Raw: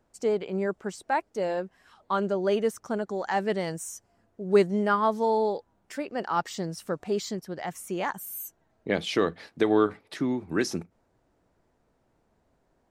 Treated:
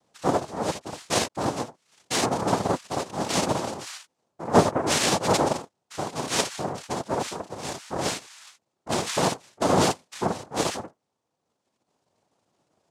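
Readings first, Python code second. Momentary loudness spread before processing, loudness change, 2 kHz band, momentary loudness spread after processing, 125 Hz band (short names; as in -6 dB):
13 LU, +2.0 dB, +2.0 dB, 13 LU, +6.0 dB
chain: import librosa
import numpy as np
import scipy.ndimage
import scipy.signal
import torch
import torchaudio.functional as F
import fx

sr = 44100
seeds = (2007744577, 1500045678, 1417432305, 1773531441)

y = fx.room_early_taps(x, sr, ms=(34, 60, 78), db=(-4.0, -4.0, -5.0))
y = fx.dereverb_blind(y, sr, rt60_s=1.6)
y = fx.noise_vocoder(y, sr, seeds[0], bands=2)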